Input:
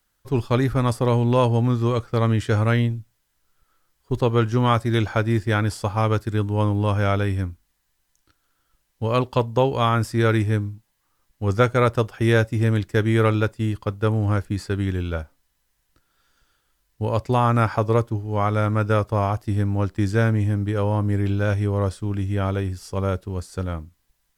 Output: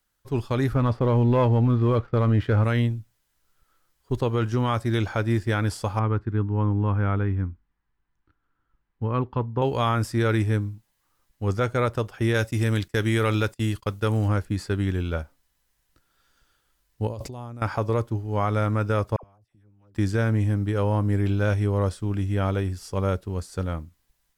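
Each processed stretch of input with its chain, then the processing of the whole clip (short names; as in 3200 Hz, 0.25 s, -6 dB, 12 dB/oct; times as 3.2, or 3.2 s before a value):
0.75–2.64 air absorption 330 m + sample leveller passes 1
5.99–9.62 LPF 1400 Hz + bell 600 Hz -11 dB 0.67 oct
12.34–14.28 gate -41 dBFS, range -18 dB + high shelf 2100 Hz +9 dB
17.07–17.62 bell 1600 Hz -11.5 dB 1.9 oct + negative-ratio compressor -34 dBFS
19.16–19.95 flipped gate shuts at -30 dBFS, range -35 dB + dispersion lows, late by 74 ms, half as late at 900 Hz
whole clip: AGC gain up to 3.5 dB; limiter -8.5 dBFS; gain -4.5 dB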